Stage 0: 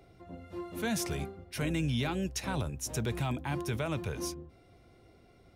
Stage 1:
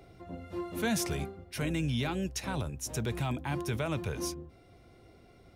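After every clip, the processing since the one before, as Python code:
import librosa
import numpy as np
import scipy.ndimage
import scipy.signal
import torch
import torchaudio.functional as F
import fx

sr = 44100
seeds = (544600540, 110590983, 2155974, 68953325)

y = fx.rider(x, sr, range_db=5, speed_s=2.0)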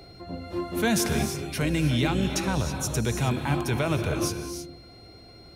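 y = fx.rev_gated(x, sr, seeds[0], gate_ms=350, shape='rising', drr_db=6.0)
y = y + 10.0 ** (-58.0 / 20.0) * np.sin(2.0 * np.pi * 4200.0 * np.arange(len(y)) / sr)
y = y * librosa.db_to_amplitude(6.5)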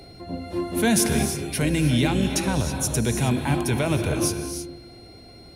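y = fx.graphic_eq_31(x, sr, hz=(250, 1250, 10000), db=(4, -6, 9))
y = fx.rev_spring(y, sr, rt60_s=1.6, pass_ms=(40,), chirp_ms=55, drr_db=15.0)
y = y * librosa.db_to_amplitude(2.5)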